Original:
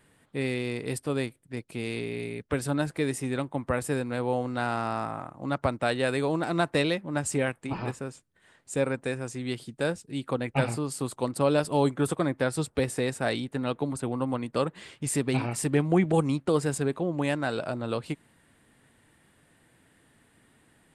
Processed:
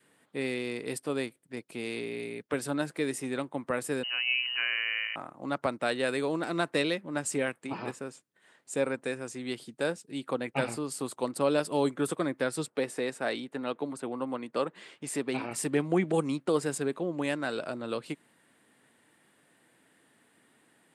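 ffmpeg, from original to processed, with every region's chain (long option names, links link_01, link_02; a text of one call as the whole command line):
ffmpeg -i in.wav -filter_complex "[0:a]asettb=1/sr,asplit=3[link_01][link_02][link_03];[link_01]atrim=end=4.034[link_04];[link_02]atrim=start=4.03:end=5.16,asetpts=PTS-STARTPTS,afade=type=in:duration=0.004:curve=qsin,afade=type=out:start_time=1.126:duration=0.004:curve=qsin,acrusher=bits=8:mode=log:mix=0:aa=0.000001,lowpass=frequency=2600:width_type=q:width=0.5098,lowpass=frequency=2600:width_type=q:width=0.6013,lowpass=frequency=2600:width_type=q:width=0.9,lowpass=frequency=2600:width_type=q:width=2.563,afreqshift=-3100[link_05];[link_03]atrim=start=5.156[link_06];[link_04][link_05]acrossfade=duration=0.004:curve1=hsin:curve2=qsin[link_07];[link_07][link_06]acrossfade=duration=0.004:curve1=qsin:curve2=hsin,asettb=1/sr,asplit=3[link_08][link_09][link_10];[link_08]atrim=end=12.664[link_11];[link_09]atrim=start=12.66:end=15.51,asetpts=PTS-STARTPTS,afade=type=in:duration=0.004:curve=qsin,afade=type=out:start_time=2.846:duration=0.004:curve=qsin,highpass=frequency=200:poles=1,highshelf=frequency=4700:gain=-6.5[link_12];[link_10]atrim=start=15.506[link_13];[link_11][link_12]acrossfade=duration=0.004:curve1=hsin:curve2=qsin[link_14];[link_14][link_13]acrossfade=duration=0.004:curve1=qsin:curve2=hsin,highpass=220,adynamicequalizer=threshold=0.00631:dfrequency=790:dqfactor=2.1:tfrequency=790:tqfactor=2.1:attack=5:release=100:ratio=0.375:range=2.5:mode=cutabove:tftype=bell,volume=-1.5dB" out.wav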